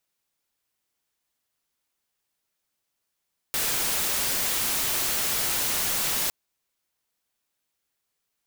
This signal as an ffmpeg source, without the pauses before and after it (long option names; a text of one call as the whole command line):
ffmpeg -f lavfi -i "anoisesrc=color=white:amplitude=0.0868:duration=2.76:sample_rate=44100:seed=1" out.wav